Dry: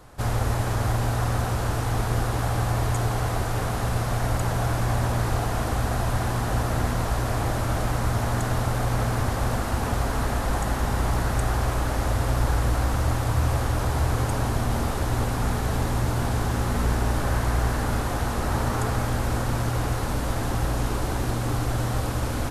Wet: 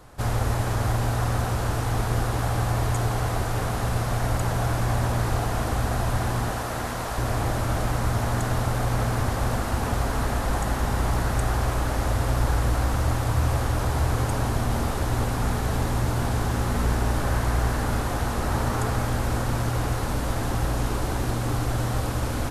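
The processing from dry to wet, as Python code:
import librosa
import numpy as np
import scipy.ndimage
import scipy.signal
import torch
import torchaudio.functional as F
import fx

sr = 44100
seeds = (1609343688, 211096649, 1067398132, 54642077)

y = fx.low_shelf(x, sr, hz=240.0, db=-10.0, at=(6.51, 7.18))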